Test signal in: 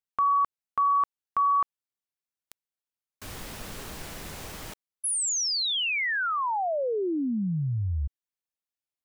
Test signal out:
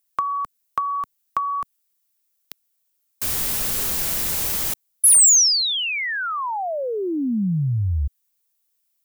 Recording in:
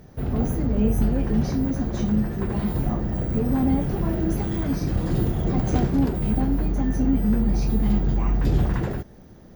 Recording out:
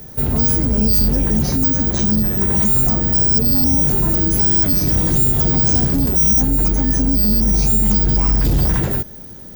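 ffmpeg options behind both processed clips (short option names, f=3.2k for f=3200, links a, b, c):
-filter_complex "[0:a]aemphasis=mode=production:type=75kf,acrossover=split=220|6000[a][b][c];[b]acompressor=threshold=-33dB:ratio=6:attack=51:release=97:knee=2.83:detection=peak[d];[a][d][c]amix=inputs=3:normalize=0,asoftclip=type=hard:threshold=-17.5dB,volume=6.5dB"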